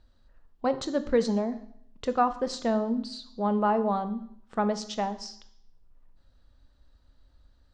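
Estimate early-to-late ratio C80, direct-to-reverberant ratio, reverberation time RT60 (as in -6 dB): 17.0 dB, 11.0 dB, 0.70 s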